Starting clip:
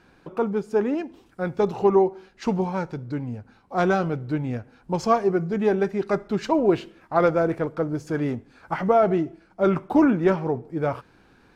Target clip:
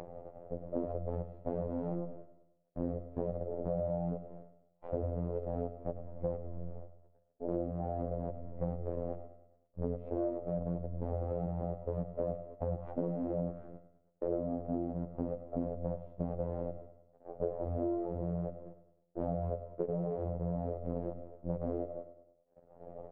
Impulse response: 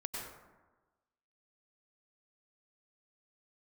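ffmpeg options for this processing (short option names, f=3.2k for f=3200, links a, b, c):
-af "acompressor=mode=upward:threshold=-32dB:ratio=2.5,acrusher=bits=5:dc=4:mix=0:aa=0.000001,volume=20dB,asoftclip=hard,volume=-20dB,lowpass=f=1.1k:t=q:w=5.6,asetrate=22050,aresample=44100,lowshelf=f=110:g=-5,agate=range=-32dB:threshold=-44dB:ratio=16:detection=peak,afftfilt=real='hypot(re,im)*cos(PI*b)':imag='0':win_size=2048:overlap=0.75,acompressor=threshold=-31dB:ratio=8,aecho=1:1:103|206|309|412|515:0.251|0.121|0.0579|0.0278|0.0133"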